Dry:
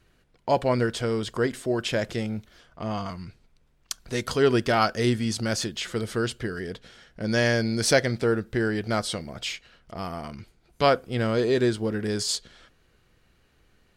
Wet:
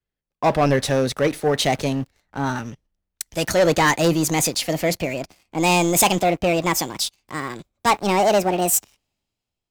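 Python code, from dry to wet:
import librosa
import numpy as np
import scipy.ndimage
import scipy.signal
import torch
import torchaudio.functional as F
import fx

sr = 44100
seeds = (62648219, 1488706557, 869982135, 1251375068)

y = fx.speed_glide(x, sr, from_pct=111, to_pct=177)
y = fx.leveller(y, sr, passes=3)
y = fx.band_widen(y, sr, depth_pct=40)
y = F.gain(torch.from_numpy(y), -3.0).numpy()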